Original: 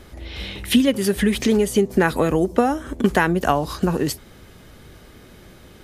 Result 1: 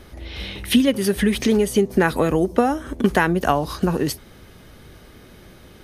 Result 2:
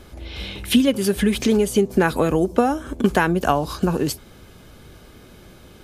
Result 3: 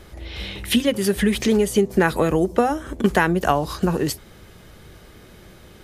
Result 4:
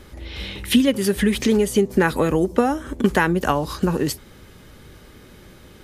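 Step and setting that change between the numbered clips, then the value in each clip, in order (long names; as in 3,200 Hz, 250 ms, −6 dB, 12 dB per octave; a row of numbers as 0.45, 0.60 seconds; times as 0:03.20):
notch filter, centre frequency: 7,400, 1,900, 260, 690 Hertz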